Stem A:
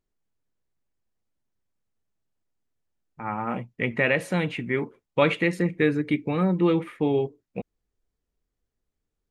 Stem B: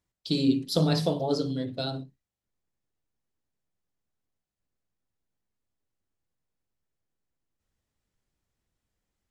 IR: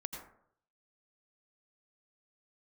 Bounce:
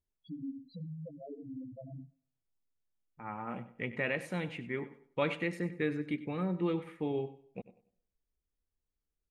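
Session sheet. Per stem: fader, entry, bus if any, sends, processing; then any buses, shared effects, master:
-12.0 dB, 0.00 s, send -15.5 dB, echo send -14.5 dB, dry
-3.0 dB, 0.00 s, send -22.5 dB, no echo send, LPF 2500 Hz 12 dB/oct; compressor 16:1, threshold -33 dBFS, peak gain reduction 16.5 dB; loudest bins only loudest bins 2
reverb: on, RT60 0.65 s, pre-delay 78 ms
echo: feedback echo 96 ms, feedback 27%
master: dry

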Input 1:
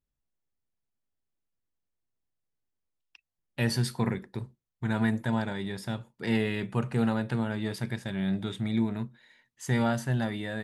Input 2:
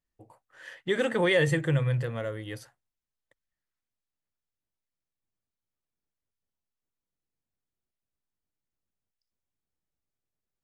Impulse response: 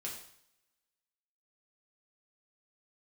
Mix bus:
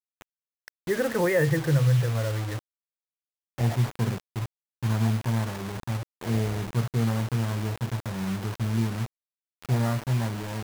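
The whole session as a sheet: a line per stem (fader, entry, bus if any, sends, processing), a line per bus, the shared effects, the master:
-2.5 dB, 0.00 s, send -24 dB, sample-and-hold 17×
+1.0 dB, 0.00 s, no send, dry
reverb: on, pre-delay 3 ms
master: LPF 1900 Hz 24 dB/oct; bell 110 Hz +11 dB 0.38 oct; bit-crush 6-bit

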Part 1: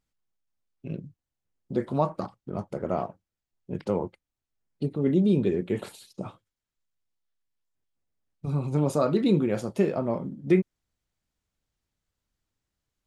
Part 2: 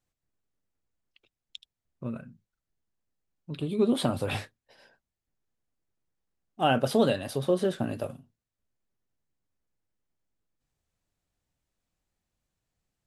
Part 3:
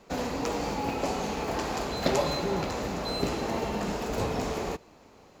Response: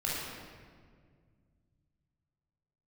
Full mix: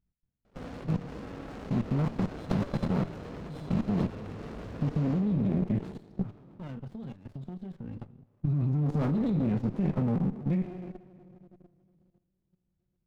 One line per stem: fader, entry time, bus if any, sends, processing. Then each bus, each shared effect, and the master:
-4.0 dB, 0.00 s, bus A, send -13.5 dB, dry
-9.0 dB, 0.00 s, bus A, send -22.5 dB, compressor, threshold -31 dBFS, peak gain reduction 13.5 dB
-9.0 dB, 0.45 s, no bus, send -4.5 dB, dry
bus A: 0.0 dB, resonant low shelf 300 Hz +12 dB, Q 1.5; limiter -15 dBFS, peak gain reduction 10.5 dB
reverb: on, RT60 1.9 s, pre-delay 18 ms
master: LPF 4000 Hz 12 dB/oct; level quantiser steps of 13 dB; running maximum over 33 samples

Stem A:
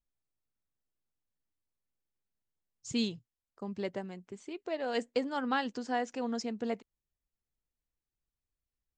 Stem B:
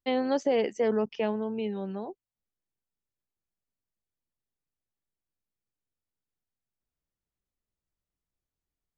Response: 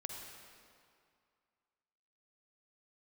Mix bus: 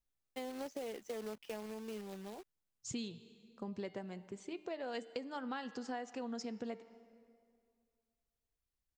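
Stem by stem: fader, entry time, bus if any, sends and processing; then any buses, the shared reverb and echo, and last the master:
-1.5 dB, 0.00 s, send -15 dB, de-hum 151.9 Hz, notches 35
-11.5 dB, 0.30 s, no send, bell 140 Hz -9 dB 0.45 oct; companded quantiser 4-bit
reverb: on, RT60 2.3 s, pre-delay 43 ms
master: compressor 6:1, threshold -39 dBFS, peak gain reduction 13 dB

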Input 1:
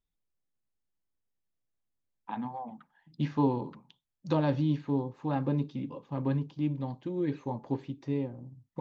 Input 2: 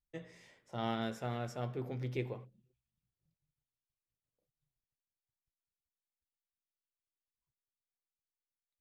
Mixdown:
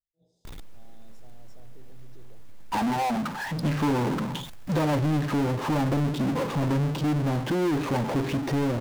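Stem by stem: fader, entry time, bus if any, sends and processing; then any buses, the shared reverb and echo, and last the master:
+2.5 dB, 0.45 s, no send, high shelf 3400 Hz -11 dB; power-law curve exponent 0.35
-10.0 dB, 0.00 s, no send, elliptic band-stop 800–3800 Hz; limiter -37 dBFS, peak gain reduction 11.5 dB; attack slew limiter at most 350 dB/s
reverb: off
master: compressor 2:1, threshold -27 dBFS, peak gain reduction 6.5 dB

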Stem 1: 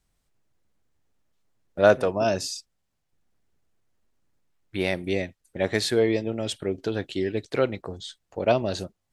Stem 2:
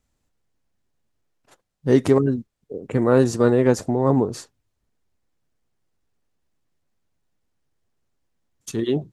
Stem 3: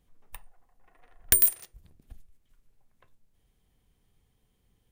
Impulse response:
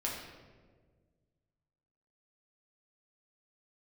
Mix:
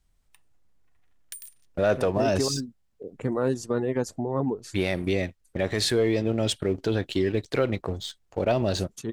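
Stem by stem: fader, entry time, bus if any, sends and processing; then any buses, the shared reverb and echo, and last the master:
0.0 dB, 0.00 s, no send, low shelf 80 Hz +10.5 dB; sample leveller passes 1
-6.5 dB, 0.30 s, no send, reverb removal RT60 0.9 s
-7.0 dB, 0.00 s, no send, band-pass 4700 Hz, Q 0.7; auto duck -13 dB, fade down 0.80 s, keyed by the first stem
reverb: off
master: limiter -14.5 dBFS, peak gain reduction 10 dB

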